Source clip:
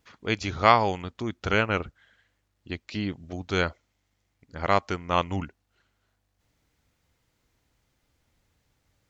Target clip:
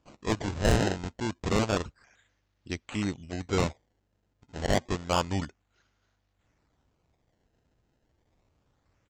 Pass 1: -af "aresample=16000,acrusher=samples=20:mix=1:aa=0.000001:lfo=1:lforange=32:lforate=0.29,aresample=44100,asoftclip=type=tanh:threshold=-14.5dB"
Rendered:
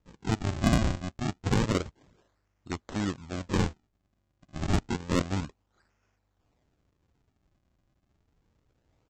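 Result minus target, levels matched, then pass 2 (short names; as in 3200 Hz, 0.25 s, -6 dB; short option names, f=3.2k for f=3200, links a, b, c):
decimation with a swept rate: distortion +7 dB
-af "aresample=16000,acrusher=samples=8:mix=1:aa=0.000001:lfo=1:lforange=12.8:lforate=0.29,aresample=44100,asoftclip=type=tanh:threshold=-14.5dB"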